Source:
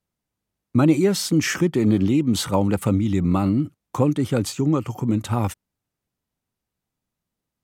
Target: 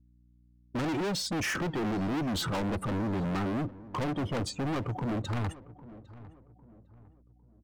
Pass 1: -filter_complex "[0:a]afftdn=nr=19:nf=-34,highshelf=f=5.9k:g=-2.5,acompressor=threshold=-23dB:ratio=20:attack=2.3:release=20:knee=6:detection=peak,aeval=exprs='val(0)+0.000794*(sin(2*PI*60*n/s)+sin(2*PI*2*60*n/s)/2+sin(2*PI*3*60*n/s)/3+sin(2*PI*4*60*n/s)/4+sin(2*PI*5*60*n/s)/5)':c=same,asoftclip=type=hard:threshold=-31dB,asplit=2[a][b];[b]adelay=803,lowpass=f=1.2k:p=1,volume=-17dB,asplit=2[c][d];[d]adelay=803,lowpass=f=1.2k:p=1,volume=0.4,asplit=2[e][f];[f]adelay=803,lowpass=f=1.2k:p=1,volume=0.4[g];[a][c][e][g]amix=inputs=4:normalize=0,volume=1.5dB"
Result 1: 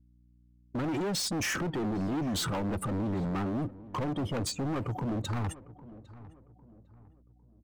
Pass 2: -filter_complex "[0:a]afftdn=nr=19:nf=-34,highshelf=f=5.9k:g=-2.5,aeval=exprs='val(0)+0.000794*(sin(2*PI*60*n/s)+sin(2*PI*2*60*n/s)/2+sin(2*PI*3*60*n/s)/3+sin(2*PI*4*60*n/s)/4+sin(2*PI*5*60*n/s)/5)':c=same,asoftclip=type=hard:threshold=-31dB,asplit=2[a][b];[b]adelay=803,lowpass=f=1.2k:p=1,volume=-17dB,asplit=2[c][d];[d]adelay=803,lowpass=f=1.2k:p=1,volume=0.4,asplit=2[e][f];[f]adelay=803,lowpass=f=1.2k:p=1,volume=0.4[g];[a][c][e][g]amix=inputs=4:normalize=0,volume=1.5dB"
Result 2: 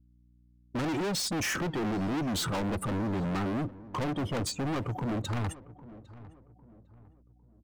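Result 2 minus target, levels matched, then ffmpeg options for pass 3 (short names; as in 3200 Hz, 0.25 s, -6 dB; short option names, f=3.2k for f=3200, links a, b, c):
8000 Hz band +4.0 dB
-filter_complex "[0:a]afftdn=nr=19:nf=-34,highshelf=f=5.9k:g=-14.5,aeval=exprs='val(0)+0.000794*(sin(2*PI*60*n/s)+sin(2*PI*2*60*n/s)/2+sin(2*PI*3*60*n/s)/3+sin(2*PI*4*60*n/s)/4+sin(2*PI*5*60*n/s)/5)':c=same,asoftclip=type=hard:threshold=-31dB,asplit=2[a][b];[b]adelay=803,lowpass=f=1.2k:p=1,volume=-17dB,asplit=2[c][d];[d]adelay=803,lowpass=f=1.2k:p=1,volume=0.4,asplit=2[e][f];[f]adelay=803,lowpass=f=1.2k:p=1,volume=0.4[g];[a][c][e][g]amix=inputs=4:normalize=0,volume=1.5dB"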